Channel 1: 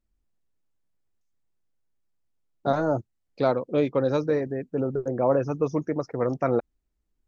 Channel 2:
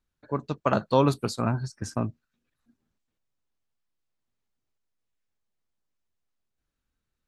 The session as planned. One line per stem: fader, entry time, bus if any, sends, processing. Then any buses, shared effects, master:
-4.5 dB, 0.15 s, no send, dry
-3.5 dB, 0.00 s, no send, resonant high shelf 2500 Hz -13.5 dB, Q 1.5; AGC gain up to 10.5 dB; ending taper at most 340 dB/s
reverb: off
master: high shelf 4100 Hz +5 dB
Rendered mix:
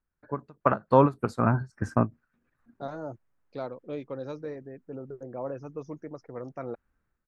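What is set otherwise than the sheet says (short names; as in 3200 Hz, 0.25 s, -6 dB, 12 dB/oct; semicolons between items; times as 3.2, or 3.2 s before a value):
stem 1 -4.5 dB -> -13.0 dB; master: missing high shelf 4100 Hz +5 dB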